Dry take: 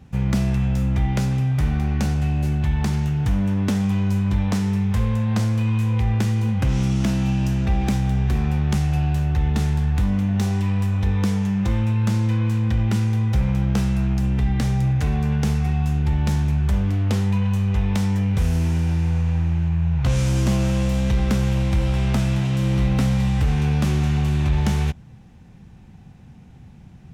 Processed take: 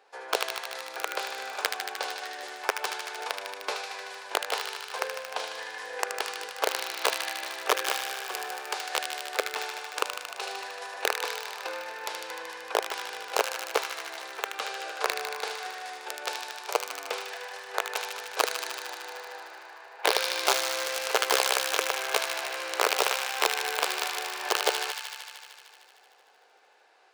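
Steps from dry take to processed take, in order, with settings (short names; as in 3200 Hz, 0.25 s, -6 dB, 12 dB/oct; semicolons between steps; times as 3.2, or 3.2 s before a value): formant shift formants -6 st; wrapped overs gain 12.5 dB; elliptic high-pass 430 Hz, stop band 60 dB; high shelf 7000 Hz -5 dB; notch 1900 Hz, Q 9.9; thin delay 76 ms, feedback 81%, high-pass 1600 Hz, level -5 dB; gain +1.5 dB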